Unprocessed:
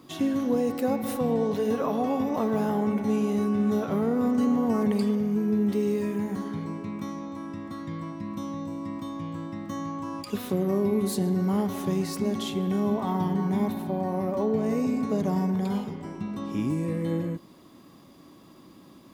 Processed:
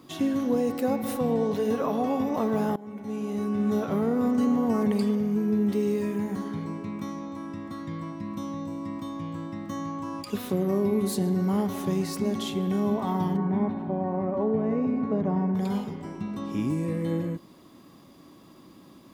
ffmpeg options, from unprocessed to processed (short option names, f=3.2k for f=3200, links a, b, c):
-filter_complex "[0:a]asplit=3[a][b][c];[a]afade=t=out:st=13.36:d=0.02[d];[b]lowpass=1.8k,afade=t=in:st=13.36:d=0.02,afade=t=out:st=15.54:d=0.02[e];[c]afade=t=in:st=15.54:d=0.02[f];[d][e][f]amix=inputs=3:normalize=0,asplit=2[g][h];[g]atrim=end=2.76,asetpts=PTS-STARTPTS,afade=t=out:st=2.756:d=0.004:c=hsin:silence=0.0841395[i];[h]atrim=start=2.76,asetpts=PTS-STARTPTS,afade=t=in:d=1.02:silence=0.0841395[j];[i][j]concat=n=2:v=0:a=1"